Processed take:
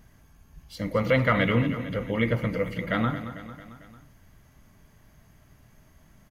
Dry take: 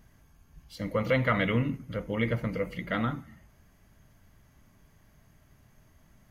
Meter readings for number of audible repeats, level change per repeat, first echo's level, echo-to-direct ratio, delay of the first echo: 4, -4.5 dB, -12.0 dB, -10.5 dB, 0.224 s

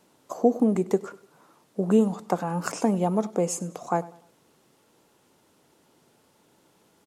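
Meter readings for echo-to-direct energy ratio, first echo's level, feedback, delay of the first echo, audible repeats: -20.0 dB, -20.5 dB, 38%, 99 ms, 2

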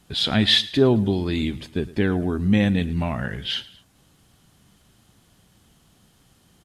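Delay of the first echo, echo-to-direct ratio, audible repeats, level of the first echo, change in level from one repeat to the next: 0.109 s, -18.5 dB, 2, -19.5 dB, -6.0 dB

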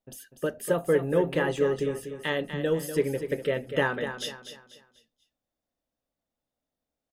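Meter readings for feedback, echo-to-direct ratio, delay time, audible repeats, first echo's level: 36%, -9.0 dB, 0.245 s, 3, -9.5 dB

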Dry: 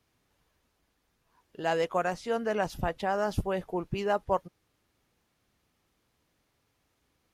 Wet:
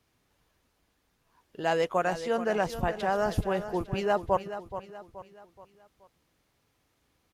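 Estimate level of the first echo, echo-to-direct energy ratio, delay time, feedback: -11.5 dB, -10.5 dB, 0.426 s, 43%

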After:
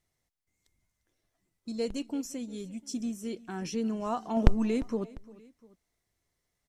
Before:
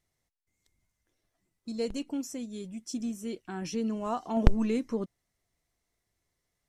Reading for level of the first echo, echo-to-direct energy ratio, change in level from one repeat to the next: -21.0 dB, -20.0 dB, -5.5 dB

